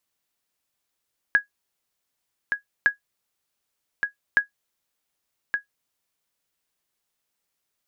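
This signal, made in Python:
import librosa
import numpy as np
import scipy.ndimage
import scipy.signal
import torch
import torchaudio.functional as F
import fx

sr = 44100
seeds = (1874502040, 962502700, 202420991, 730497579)

y = fx.sonar_ping(sr, hz=1660.0, decay_s=0.12, every_s=1.51, pings=3, echo_s=1.17, echo_db=-6.5, level_db=-8.5)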